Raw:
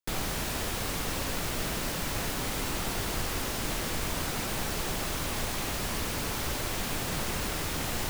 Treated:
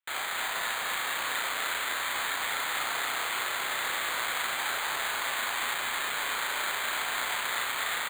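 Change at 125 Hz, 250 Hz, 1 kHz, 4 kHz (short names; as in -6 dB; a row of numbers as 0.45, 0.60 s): -23.5, -15.5, +4.5, +3.0 dB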